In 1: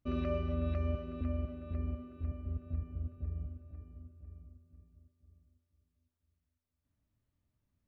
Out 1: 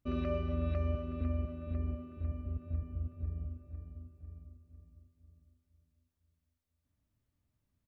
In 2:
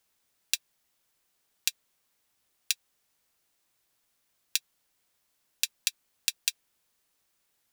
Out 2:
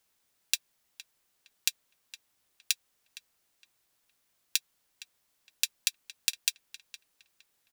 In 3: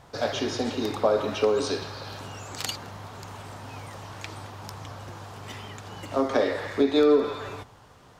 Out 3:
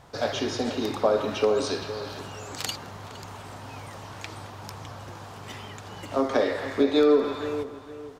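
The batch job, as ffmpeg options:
ffmpeg -i in.wav -filter_complex "[0:a]asplit=2[link_01][link_02];[link_02]adelay=463,lowpass=frequency=2700:poles=1,volume=-13dB,asplit=2[link_03][link_04];[link_04]adelay=463,lowpass=frequency=2700:poles=1,volume=0.32,asplit=2[link_05][link_06];[link_06]adelay=463,lowpass=frequency=2700:poles=1,volume=0.32[link_07];[link_01][link_03][link_05][link_07]amix=inputs=4:normalize=0" out.wav

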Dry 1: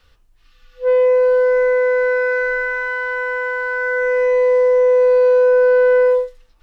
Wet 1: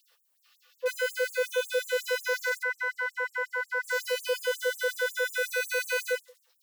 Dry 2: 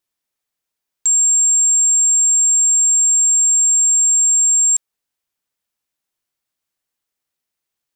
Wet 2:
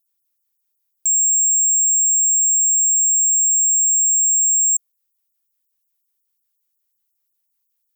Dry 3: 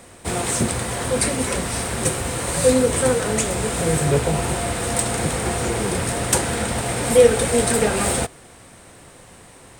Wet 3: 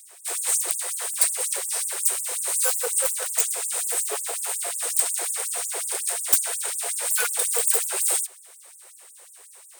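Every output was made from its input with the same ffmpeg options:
ffmpeg -i in.wav -af "aeval=exprs='0.211*(abs(mod(val(0)/0.211+3,4)-2)-1)':channel_layout=same,aemphasis=mode=production:type=50fm,afftfilt=real='re*gte(b*sr/1024,340*pow(7100/340,0.5+0.5*sin(2*PI*5.5*pts/sr)))':imag='im*gte(b*sr/1024,340*pow(7100/340,0.5+0.5*sin(2*PI*5.5*pts/sr)))':win_size=1024:overlap=0.75,volume=-7dB" out.wav

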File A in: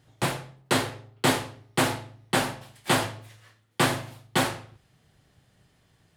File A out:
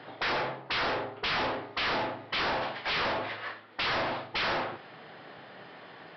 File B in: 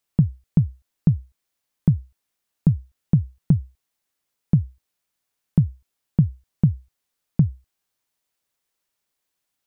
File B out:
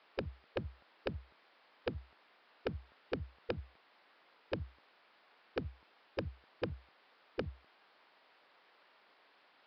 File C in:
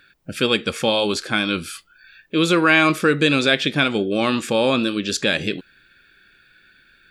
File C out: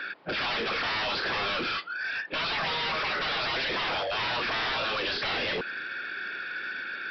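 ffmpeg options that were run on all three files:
ffmpeg -i in.wav -filter_complex "[0:a]acrossover=split=440|1000[link_01][link_02][link_03];[link_01]highpass=220[link_04];[link_02]aeval=exprs='0.0562*(abs(mod(val(0)/0.0562+3,4)-2)-1)':channel_layout=same[link_05];[link_03]highshelf=frequency=3900:gain=-8.5[link_06];[link_04][link_05][link_06]amix=inputs=3:normalize=0,afftfilt=real='re*lt(hypot(re,im),0.1)':imag='im*lt(hypot(re,im),0.1)':win_size=1024:overlap=0.75,asplit=2[link_07][link_08];[link_08]highpass=frequency=720:poles=1,volume=24dB,asoftclip=type=tanh:threshold=-16dB[link_09];[link_07][link_09]amix=inputs=2:normalize=0,lowpass=frequency=1500:poles=1,volume=-6dB,aresample=11025,asoftclip=type=tanh:threshold=-36dB,aresample=44100,volume=8dB" out.wav

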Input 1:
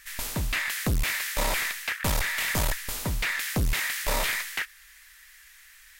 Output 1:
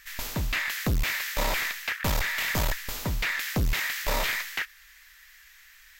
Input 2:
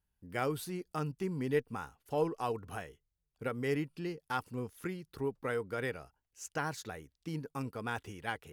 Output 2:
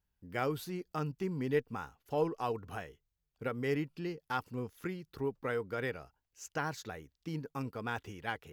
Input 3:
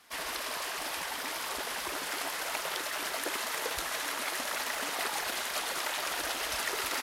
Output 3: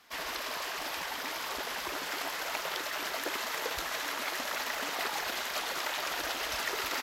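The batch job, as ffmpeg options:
ffmpeg -i in.wav -af "equalizer=frequency=9500:width_type=o:width=0.39:gain=-11.5" out.wav

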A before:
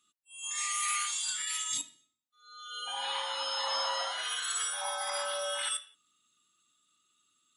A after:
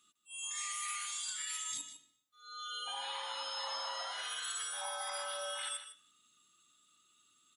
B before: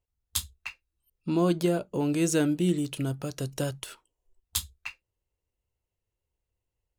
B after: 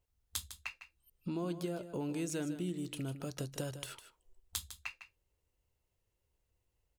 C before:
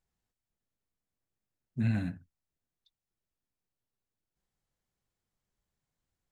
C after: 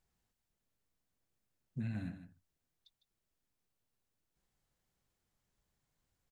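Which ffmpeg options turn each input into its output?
ffmpeg -i in.wav -filter_complex "[0:a]acompressor=threshold=-44dB:ratio=3,asplit=2[link_01][link_02];[link_02]aecho=0:1:154:0.266[link_03];[link_01][link_03]amix=inputs=2:normalize=0,volume=3dB" out.wav

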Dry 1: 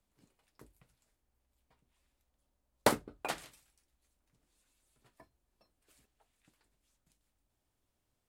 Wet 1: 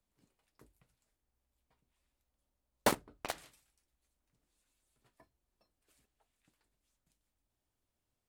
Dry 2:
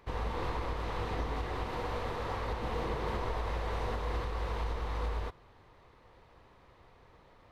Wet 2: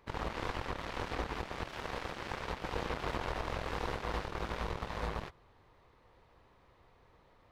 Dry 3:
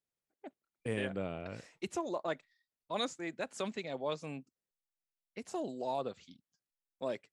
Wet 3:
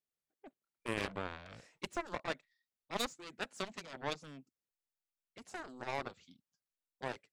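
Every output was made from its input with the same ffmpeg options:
ffmpeg -i in.wav -af "asoftclip=type=tanh:threshold=-27.5dB,aeval=exprs='0.0422*(cos(1*acos(clip(val(0)/0.0422,-1,1)))-cos(1*PI/2))+0.0188*(cos(3*acos(clip(val(0)/0.0422,-1,1)))-cos(3*PI/2))':channel_layout=same,volume=5dB" out.wav

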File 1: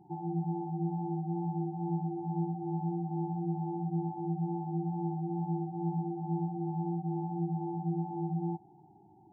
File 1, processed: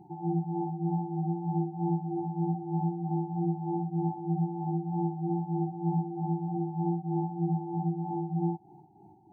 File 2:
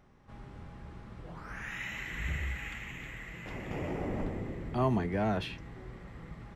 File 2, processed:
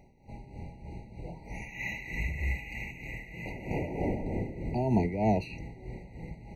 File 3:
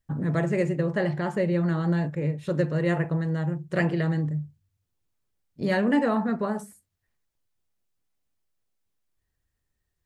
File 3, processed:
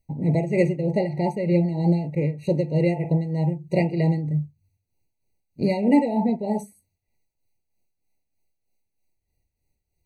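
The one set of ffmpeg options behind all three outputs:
ffmpeg -i in.wav -af "tremolo=f=3.2:d=0.62,afftfilt=real='re*eq(mod(floor(b*sr/1024/960),2),0)':imag='im*eq(mod(floor(b*sr/1024/960),2),0)':win_size=1024:overlap=0.75,volume=6dB" out.wav

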